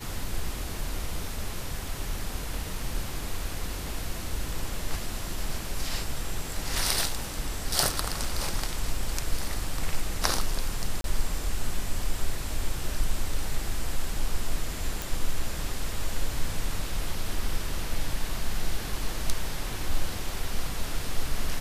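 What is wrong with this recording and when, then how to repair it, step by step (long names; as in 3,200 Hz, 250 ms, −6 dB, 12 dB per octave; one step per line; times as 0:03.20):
0:11.01–0:11.04: drop-out 32 ms
0:15.02: click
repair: click removal
repair the gap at 0:11.01, 32 ms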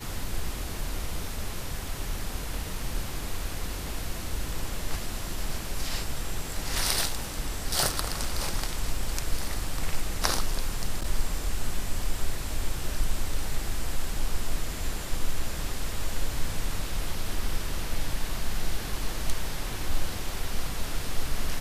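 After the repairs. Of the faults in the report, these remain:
none of them is left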